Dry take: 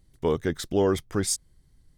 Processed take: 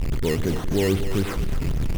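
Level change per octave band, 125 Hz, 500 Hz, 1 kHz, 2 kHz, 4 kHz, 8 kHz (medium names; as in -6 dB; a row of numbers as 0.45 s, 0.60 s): +9.0 dB, +0.5 dB, -1.5 dB, +5.5 dB, +1.5 dB, -7.0 dB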